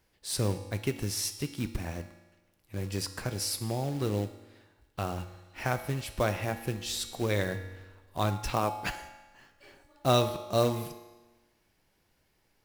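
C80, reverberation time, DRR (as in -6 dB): 12.0 dB, 1.2 s, 7.5 dB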